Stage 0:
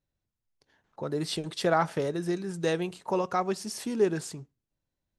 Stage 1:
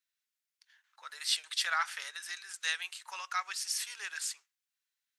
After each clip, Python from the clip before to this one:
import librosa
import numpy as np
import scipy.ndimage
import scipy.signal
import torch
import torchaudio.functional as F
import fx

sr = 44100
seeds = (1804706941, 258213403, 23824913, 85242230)

y = scipy.signal.sosfilt(scipy.signal.butter(4, 1500.0, 'highpass', fs=sr, output='sos'), x)
y = F.gain(torch.from_numpy(y), 4.5).numpy()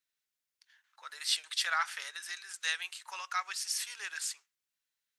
y = fx.low_shelf(x, sr, hz=320.0, db=2.5)